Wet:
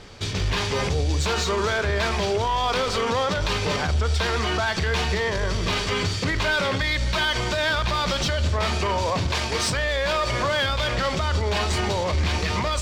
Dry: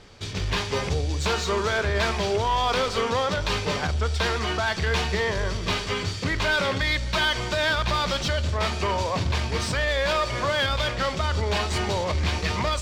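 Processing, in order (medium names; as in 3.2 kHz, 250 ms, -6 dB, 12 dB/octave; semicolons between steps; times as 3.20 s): 9.28–9.70 s: tone controls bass -8 dB, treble +3 dB; peak limiter -20.5 dBFS, peak gain reduction 7 dB; trim +5.5 dB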